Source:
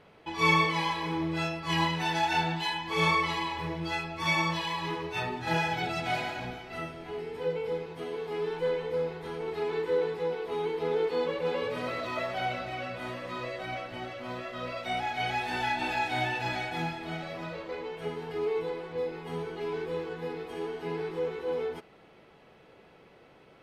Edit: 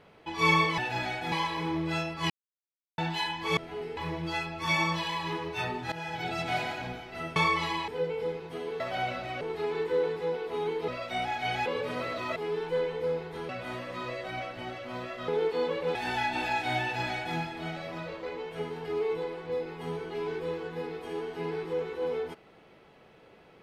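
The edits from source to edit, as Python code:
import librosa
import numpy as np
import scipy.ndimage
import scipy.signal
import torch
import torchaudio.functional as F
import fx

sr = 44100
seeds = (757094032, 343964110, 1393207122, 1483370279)

y = fx.edit(x, sr, fx.silence(start_s=1.76, length_s=0.68),
    fx.swap(start_s=3.03, length_s=0.52, other_s=6.94, other_length_s=0.4),
    fx.fade_in_from(start_s=5.5, length_s=0.45, floor_db=-17.0),
    fx.swap(start_s=8.26, length_s=1.13, other_s=12.23, other_length_s=0.61),
    fx.swap(start_s=10.86, length_s=0.67, other_s=14.63, other_length_s=0.78),
    fx.duplicate(start_s=16.28, length_s=0.54, to_s=0.78), tone=tone)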